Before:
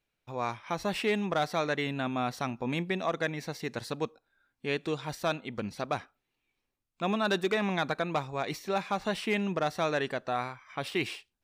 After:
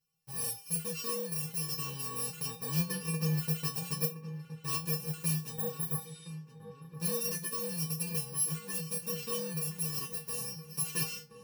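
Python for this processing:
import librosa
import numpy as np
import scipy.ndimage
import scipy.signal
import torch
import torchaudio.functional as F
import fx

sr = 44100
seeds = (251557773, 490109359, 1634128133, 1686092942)

y = fx.bit_reversed(x, sr, seeds[0], block=64)
y = fx.high_shelf(y, sr, hz=4800.0, db=-11.0, at=(2.9, 3.36), fade=0.02)
y = fx.spec_repair(y, sr, seeds[1], start_s=5.57, length_s=0.68, low_hz=1800.0, high_hz=11000.0, source='before')
y = fx.rider(y, sr, range_db=5, speed_s=0.5)
y = fx.comb_fb(y, sr, f0_hz=160.0, decay_s=0.21, harmonics='odd', damping=0.0, mix_pct=100)
y = fx.echo_filtered(y, sr, ms=1019, feedback_pct=56, hz=1800.0, wet_db=-10.5)
y = y * 10.0 ** (9.0 / 20.0)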